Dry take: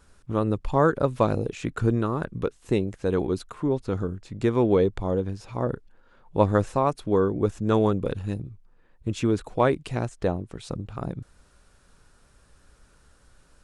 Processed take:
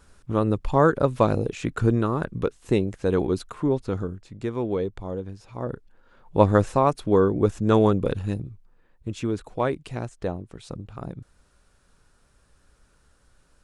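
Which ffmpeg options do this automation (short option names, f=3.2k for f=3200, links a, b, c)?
-af "volume=11dB,afade=t=out:st=3.68:d=0.73:silence=0.398107,afade=t=in:st=5.51:d=0.88:silence=0.354813,afade=t=out:st=8.14:d=0.98:silence=0.473151"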